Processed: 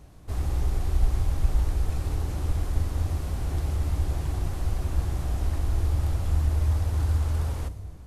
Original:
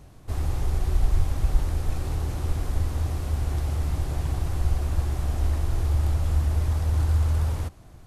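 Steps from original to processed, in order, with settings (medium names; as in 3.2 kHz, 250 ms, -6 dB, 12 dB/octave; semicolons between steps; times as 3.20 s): on a send: peaking EQ 1.3 kHz -14 dB 1.8 oct + reverberation RT60 2.1 s, pre-delay 8 ms, DRR 13.5 dB; on the sum: trim -2 dB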